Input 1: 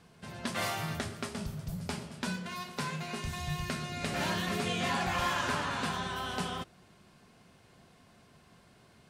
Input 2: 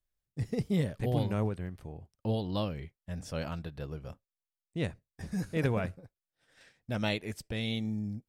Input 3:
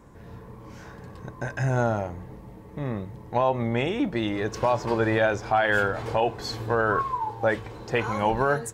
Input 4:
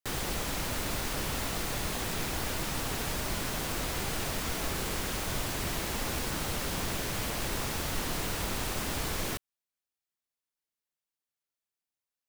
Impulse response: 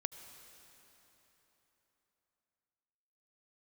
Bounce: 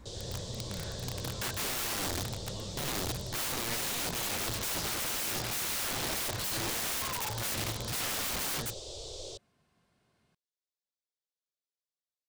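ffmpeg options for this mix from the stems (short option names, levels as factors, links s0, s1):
-filter_complex "[0:a]adelay=1250,volume=0.224[s0];[1:a]equalizer=f=360:w=0.82:g=-15,acompressor=threshold=0.0178:ratio=6,volume=0.422[s1];[2:a]aeval=exprs='val(0)+0.00178*(sin(2*PI*60*n/s)+sin(2*PI*2*60*n/s)/2+sin(2*PI*3*60*n/s)/3+sin(2*PI*4*60*n/s)/4+sin(2*PI*5*60*n/s)/5)':c=same,aeval=exprs='(mod(16.8*val(0)+1,2)-1)/16.8':c=same,equalizer=f=100:t=o:w=0.67:g=9,equalizer=f=400:t=o:w=0.67:g=-7,equalizer=f=1000:t=o:w=0.67:g=-5,equalizer=f=4000:t=o:w=0.67:g=10,volume=0.841[s2];[3:a]firequalizer=gain_entry='entry(120,0);entry(190,-28);entry(370,6);entry(550,10);entry(810,-5);entry(1700,-24);entry(3500,9);entry(5200,8);entry(8000,4);entry(12000,-25)':delay=0.05:min_phase=1,volume=0.251[s3];[s0][s1][s2][s3]amix=inputs=4:normalize=0,aeval=exprs='(mod(28.2*val(0)+1,2)-1)/28.2':c=same"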